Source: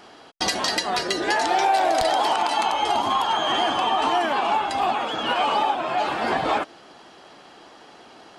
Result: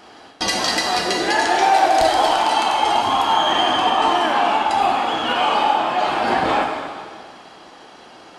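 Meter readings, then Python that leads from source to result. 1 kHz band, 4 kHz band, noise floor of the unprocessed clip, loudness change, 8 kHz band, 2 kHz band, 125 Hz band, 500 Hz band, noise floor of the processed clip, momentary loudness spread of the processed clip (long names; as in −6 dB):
+5.0 dB, +4.5 dB, −48 dBFS, +4.5 dB, +4.5 dB, +4.5 dB, +4.5 dB, +4.0 dB, −44 dBFS, 6 LU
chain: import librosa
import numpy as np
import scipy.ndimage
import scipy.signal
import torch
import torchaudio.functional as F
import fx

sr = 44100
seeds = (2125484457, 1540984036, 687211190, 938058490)

y = fx.rev_plate(x, sr, seeds[0], rt60_s=1.9, hf_ratio=0.95, predelay_ms=0, drr_db=0.0)
y = F.gain(torch.from_numpy(y), 1.5).numpy()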